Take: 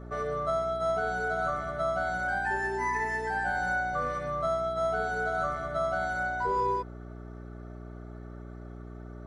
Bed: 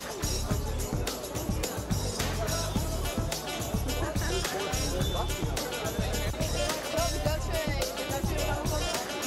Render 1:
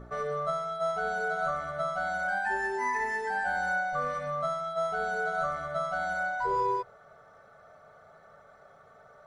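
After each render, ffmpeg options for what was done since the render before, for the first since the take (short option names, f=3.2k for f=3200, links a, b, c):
-af "bandreject=f=60:t=h:w=4,bandreject=f=120:t=h:w=4,bandreject=f=180:t=h:w=4,bandreject=f=240:t=h:w=4,bandreject=f=300:t=h:w=4,bandreject=f=360:t=h:w=4,bandreject=f=420:t=h:w=4,bandreject=f=480:t=h:w=4,bandreject=f=540:t=h:w=4,bandreject=f=600:t=h:w=4,bandreject=f=660:t=h:w=4"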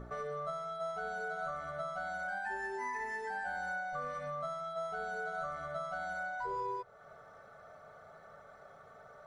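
-af "acompressor=threshold=-43dB:ratio=2"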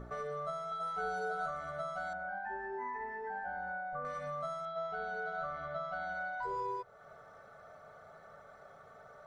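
-filter_complex "[0:a]asettb=1/sr,asplit=3[a][b][c];[a]atrim=end=0.704[d];[b]atrim=start=0.7:end=1.46,asetpts=PTS-STARTPTS,afade=t=in:d=0.004:c=qsin,afade=t=out:st=0.756:d=0.004:c=qsin,asplit=2[e][f];[f]adelay=16,volume=-2dB[g];[e][g]amix=inputs=2:normalize=0,atrim=end_sample=33516[h];[c]atrim=start=1.456[i];[d][h]acrossfade=d=0.004:c1=hsin:c2=qsin[j];[j][i]acrossfade=d=0.004:c1=qsin:c2=hsin,asettb=1/sr,asplit=3[k][l][m];[k]atrim=end=2.134[n];[l]atrim=start=2.13:end=4.05,asetpts=PTS-STARTPTS,afade=t=in:d=0.004:c=qsin,afade=t=out:st=1.916:d=0.004:c=qsin,lowpass=1.4k[o];[m]atrim=start=4.046[p];[n][o]acrossfade=d=0.004:c1=hsin:c2=qsin[q];[q][p]acrossfade=d=0.004:c1=qsin:c2=hsin,asettb=1/sr,asplit=3[r][s][t];[r]atrim=end=4.654[u];[s]atrim=start=4.65:end=6.43,asetpts=PTS-STARTPTS,afade=t=in:d=0.004:c=qsin,afade=t=out:st=1.776:d=0.004:c=qsin,lowpass=f=4.6k:w=0.5412,lowpass=f=4.6k:w=1.3066[v];[t]atrim=start=6.426[w];[u][v]acrossfade=d=0.004:c1=hsin:c2=qsin[x];[x][w]acrossfade=d=0.004:c1=qsin:c2=hsin"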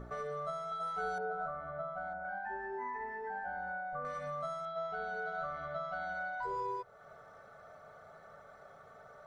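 -filter_complex "[0:a]asettb=1/sr,asplit=3[a][b][c];[a]atrim=end=1.184[d];[b]atrim=start=1.18:end=2.25,asetpts=PTS-STARTPTS,afade=t=in:d=0.004:c=qsin,afade=t=out:st=1.066:d=0.004:c=qsin,lowpass=1.4k[e];[c]atrim=start=2.246[f];[d][e]acrossfade=d=0.004:c1=hsin:c2=qsin[g];[g][f]acrossfade=d=0.004:c1=qsin:c2=hsin"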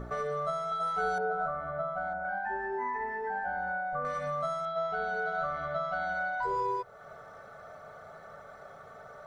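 -af "volume=6.5dB"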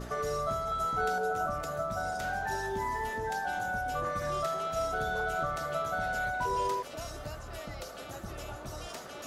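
-filter_complex "[1:a]volume=-12.5dB[a];[0:a][a]amix=inputs=2:normalize=0"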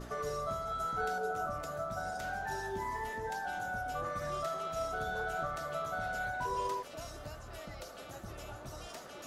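-af "flanger=delay=2.7:depth=8.6:regen=83:speed=0.89:shape=triangular"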